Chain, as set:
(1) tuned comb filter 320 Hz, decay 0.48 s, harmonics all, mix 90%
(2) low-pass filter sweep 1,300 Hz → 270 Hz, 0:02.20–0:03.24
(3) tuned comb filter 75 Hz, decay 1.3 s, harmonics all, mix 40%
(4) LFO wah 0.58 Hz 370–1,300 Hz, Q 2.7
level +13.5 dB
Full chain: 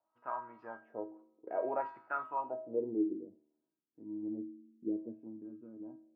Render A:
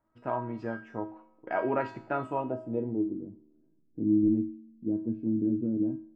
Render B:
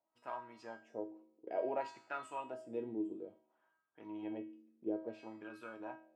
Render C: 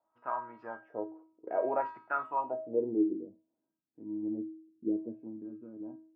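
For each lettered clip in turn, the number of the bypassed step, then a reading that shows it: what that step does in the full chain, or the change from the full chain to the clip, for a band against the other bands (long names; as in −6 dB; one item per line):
4, 125 Hz band +15.5 dB
2, change in integrated loudness −4.0 LU
3, change in integrated loudness +4.0 LU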